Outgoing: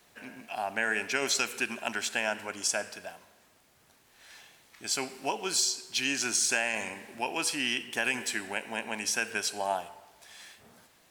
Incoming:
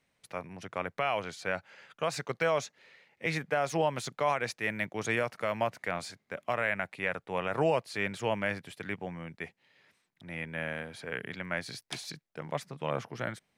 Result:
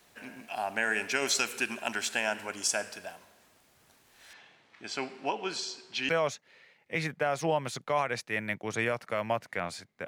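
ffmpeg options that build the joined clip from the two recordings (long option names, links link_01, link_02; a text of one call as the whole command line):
ffmpeg -i cue0.wav -i cue1.wav -filter_complex "[0:a]asettb=1/sr,asplit=3[link_01][link_02][link_03];[link_01]atrim=end=4.334[link_04];[link_02]atrim=start=4.33:end=6.09,asetpts=PTS-STARTPTS,afade=type=in:duration=0.004:curve=qsin,afade=type=out:start_time=1.756:duration=0.004:curve=qsin,highpass=110,lowpass=3300[link_05];[link_03]atrim=start=6.086[link_06];[link_04][link_05]acrossfade=duration=0.004:curve1=hsin:curve2=qsin[link_07];[link_07][link_06]acrossfade=duration=0.004:curve1=qsin:curve2=hsin,apad=whole_dur=10.07,atrim=end=10.07,atrim=end=6.092[link_08];[1:a]atrim=start=2.398:end=6.38[link_09];[link_08][link_09]acrossfade=duration=0.004:curve1=hsin:curve2=hsin" out.wav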